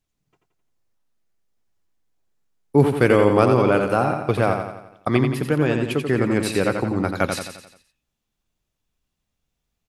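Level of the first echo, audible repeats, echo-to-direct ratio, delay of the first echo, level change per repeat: −6.0 dB, 5, −4.5 dB, 87 ms, −6.0 dB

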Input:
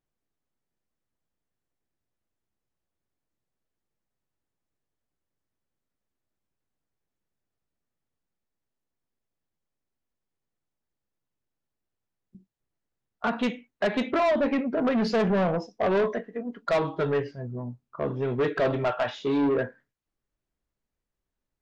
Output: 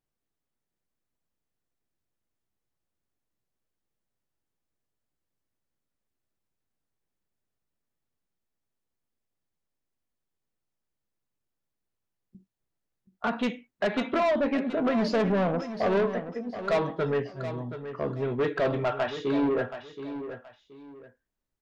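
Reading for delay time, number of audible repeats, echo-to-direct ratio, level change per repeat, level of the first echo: 725 ms, 2, −10.5 dB, −11.5 dB, −11.0 dB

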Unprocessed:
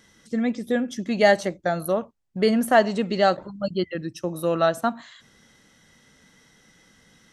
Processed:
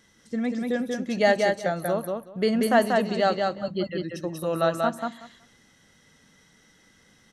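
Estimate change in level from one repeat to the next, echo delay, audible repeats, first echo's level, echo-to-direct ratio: −16.0 dB, 187 ms, 2, −3.5 dB, −3.5 dB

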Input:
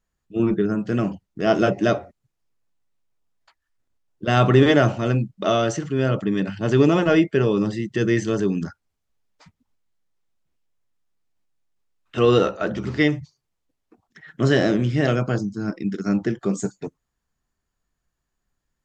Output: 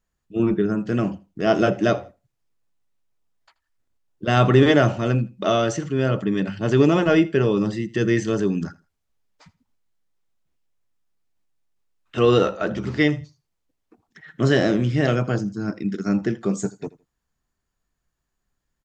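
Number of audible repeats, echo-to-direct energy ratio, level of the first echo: 2, −21.0 dB, −21.0 dB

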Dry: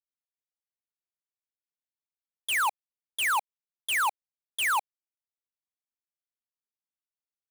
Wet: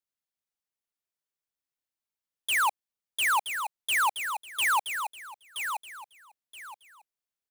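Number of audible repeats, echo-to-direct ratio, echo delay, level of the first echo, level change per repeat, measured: 3, −7.0 dB, 974 ms, −7.5 dB, −12.0 dB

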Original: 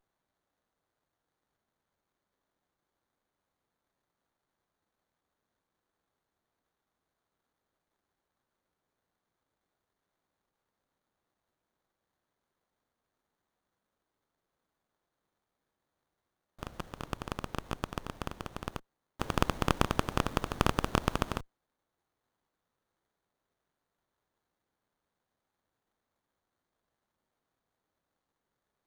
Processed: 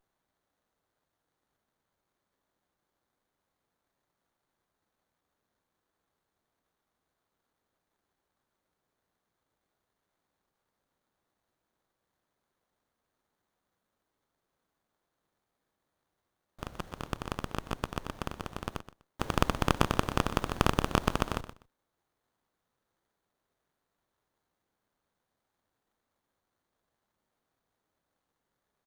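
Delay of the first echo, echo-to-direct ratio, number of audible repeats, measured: 124 ms, −13.0 dB, 2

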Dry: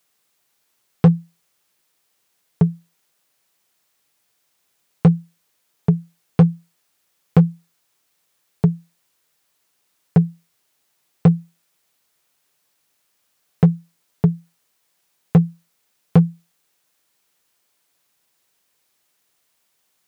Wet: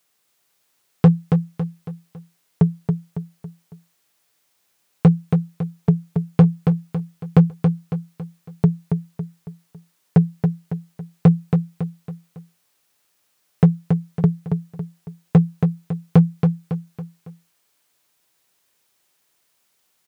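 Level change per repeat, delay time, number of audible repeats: −7.5 dB, 277 ms, 4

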